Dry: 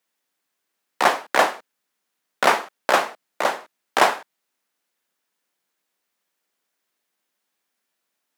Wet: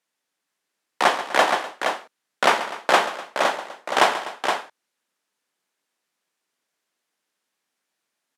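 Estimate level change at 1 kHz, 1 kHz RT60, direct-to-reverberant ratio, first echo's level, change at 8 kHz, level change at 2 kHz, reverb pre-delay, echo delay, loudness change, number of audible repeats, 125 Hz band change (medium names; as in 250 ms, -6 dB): +0.5 dB, no reverb, no reverb, -13.0 dB, -0.5 dB, +0.5 dB, no reverb, 136 ms, -1.0 dB, 3, +0.5 dB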